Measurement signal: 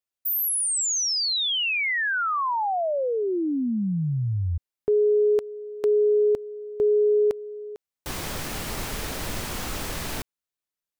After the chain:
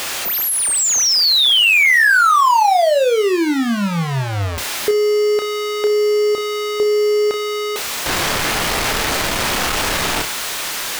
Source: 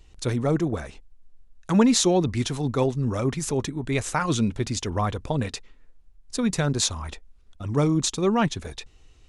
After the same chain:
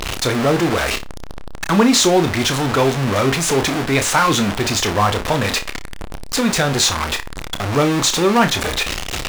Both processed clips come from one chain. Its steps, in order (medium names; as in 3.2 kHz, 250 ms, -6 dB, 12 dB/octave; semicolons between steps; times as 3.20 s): jump at every zero crossing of -23 dBFS; in parallel at -6 dB: bit crusher 5-bit; on the sum: overdrive pedal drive 11 dB, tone 4.1 kHz, clips at -1.5 dBFS; flutter echo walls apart 5.1 m, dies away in 0.2 s